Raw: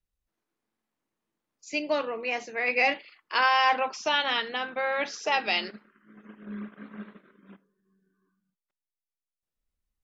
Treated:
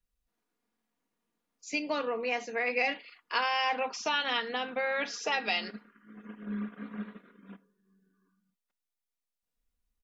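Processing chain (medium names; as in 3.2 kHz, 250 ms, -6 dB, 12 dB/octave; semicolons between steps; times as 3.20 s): comb 4.2 ms, depth 48%; compression 2:1, threshold -30 dBFS, peak gain reduction 7.5 dB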